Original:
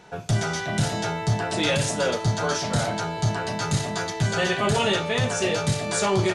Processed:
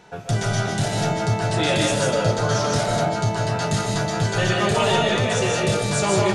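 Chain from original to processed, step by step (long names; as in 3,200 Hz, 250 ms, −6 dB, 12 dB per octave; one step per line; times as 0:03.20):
comb and all-pass reverb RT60 0.67 s, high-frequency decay 0.3×, pre-delay 110 ms, DRR −0.5 dB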